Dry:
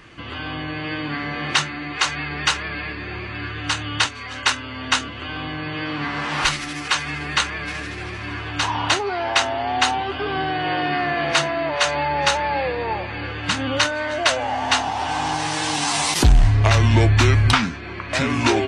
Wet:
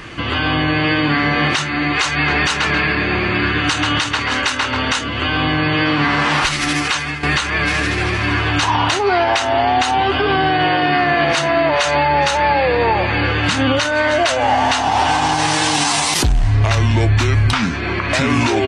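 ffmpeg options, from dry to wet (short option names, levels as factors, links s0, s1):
-filter_complex "[0:a]asplit=3[s0][s1][s2];[s0]afade=t=out:st=2.25:d=0.02[s3];[s1]asplit=2[s4][s5];[s5]adelay=134,lowpass=f=2300:p=1,volume=0.631,asplit=2[s6][s7];[s7]adelay=134,lowpass=f=2300:p=1,volume=0.36,asplit=2[s8][s9];[s9]adelay=134,lowpass=f=2300:p=1,volume=0.36,asplit=2[s10][s11];[s11]adelay=134,lowpass=f=2300:p=1,volume=0.36,asplit=2[s12][s13];[s13]adelay=134,lowpass=f=2300:p=1,volume=0.36[s14];[s4][s6][s8][s10][s12][s14]amix=inputs=6:normalize=0,afade=t=in:st=2.25:d=0.02,afade=t=out:st=5.03:d=0.02[s15];[s2]afade=t=in:st=5.03:d=0.02[s16];[s3][s15][s16]amix=inputs=3:normalize=0,asplit=2[s17][s18];[s17]atrim=end=7.23,asetpts=PTS-STARTPTS,afade=t=out:st=6.73:d=0.5:silence=0.223872[s19];[s18]atrim=start=7.23,asetpts=PTS-STARTPTS,afade=t=in:d=0.004:c=hsin:silence=0.223872[s20];[s19][s20]concat=n=2:v=0:a=1,acompressor=threshold=0.0708:ratio=6,alimiter=level_in=7.94:limit=0.891:release=50:level=0:latency=1,volume=0.531"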